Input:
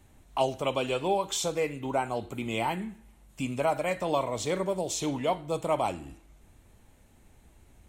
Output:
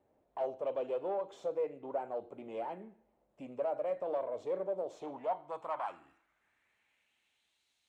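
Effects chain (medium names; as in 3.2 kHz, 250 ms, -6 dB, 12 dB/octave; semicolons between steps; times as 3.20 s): valve stage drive 25 dB, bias 0.4; band-pass sweep 540 Hz -> 4 kHz, 4.81–7.66 s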